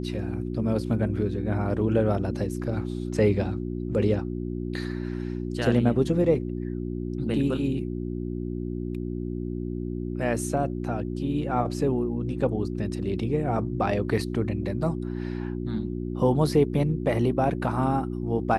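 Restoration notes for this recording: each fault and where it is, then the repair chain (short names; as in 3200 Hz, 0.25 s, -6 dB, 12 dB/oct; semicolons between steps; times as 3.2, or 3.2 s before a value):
hum 60 Hz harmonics 6 -31 dBFS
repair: de-hum 60 Hz, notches 6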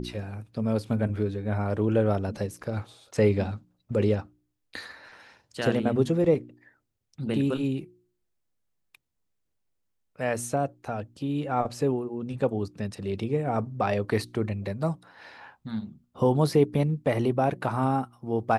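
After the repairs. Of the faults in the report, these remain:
none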